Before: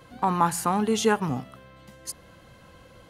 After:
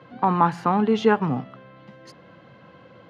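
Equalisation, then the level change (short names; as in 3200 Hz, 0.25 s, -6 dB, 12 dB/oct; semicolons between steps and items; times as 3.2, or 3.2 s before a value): HPF 120 Hz 24 dB/oct; air absorption 260 m; high shelf 5300 Hz -4 dB; +4.5 dB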